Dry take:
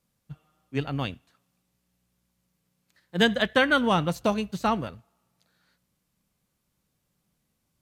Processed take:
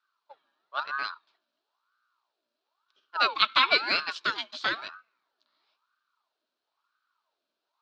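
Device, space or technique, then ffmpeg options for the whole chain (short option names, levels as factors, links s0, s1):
voice changer toy: -filter_complex "[0:a]asettb=1/sr,asplit=3[s0][s1][s2];[s0]atrim=end=3.384[s3];[s1]atrim=start=3.38:end=4.88,asetpts=PTS-STARTPTS,afade=t=in:d=0.004:c=qsin,afade=t=out:st=1.496:d=0.004:c=qsin,tiltshelf=f=670:g=-9.5[s4];[s2]atrim=start=4.876[s5];[s3][s4]acrossfade=d=0.004:c1=hsin:c2=qsin[s6];[s6][s5]acrossfade=d=0.004:c1=qsin:c2=hsin,aeval=exprs='val(0)*sin(2*PI*900*n/s+900*0.55/1*sin(2*PI*1*n/s))':c=same,highpass=490,equalizer=f=510:t=q:w=4:g=-9,equalizer=f=770:t=q:w=4:g=-8,equalizer=f=1400:t=q:w=4:g=5,equalizer=f=2000:t=q:w=4:g=-9,equalizer=f=4100:t=q:w=4:g=6,lowpass=f=4600:w=0.5412,lowpass=f=4600:w=1.3066"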